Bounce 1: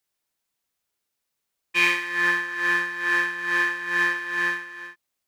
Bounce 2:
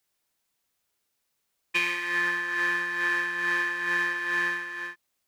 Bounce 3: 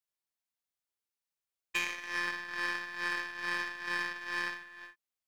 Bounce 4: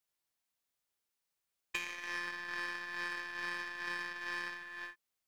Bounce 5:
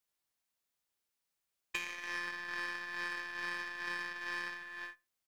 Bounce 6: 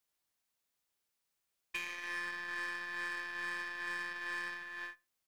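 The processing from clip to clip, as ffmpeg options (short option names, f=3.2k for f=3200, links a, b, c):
-af "acompressor=threshold=-26dB:ratio=12,volume=3dB"
-af "equalizer=f=280:t=o:w=1.7:g=-3.5,aeval=exprs='0.266*(cos(1*acos(clip(val(0)/0.266,-1,1)))-cos(1*PI/2))+0.0211*(cos(2*acos(clip(val(0)/0.266,-1,1)))-cos(2*PI/2))+0.0237*(cos(5*acos(clip(val(0)/0.266,-1,1)))-cos(5*PI/2))+0.0422*(cos(7*acos(clip(val(0)/0.266,-1,1)))-cos(7*PI/2))+0.0075*(cos(8*acos(clip(val(0)/0.266,-1,1)))-cos(8*PI/2))':c=same,volume=-6.5dB"
-af "acompressor=threshold=-41dB:ratio=5,volume=4.5dB"
-filter_complex "[0:a]asplit=2[a][b];[b]adelay=67,lowpass=f=2.1k:p=1,volume=-23.5dB,asplit=2[c][d];[d]adelay=67,lowpass=f=2.1k:p=1,volume=0.29[e];[a][c][e]amix=inputs=3:normalize=0"
-af "asoftclip=type=tanh:threshold=-30.5dB,volume=1.5dB"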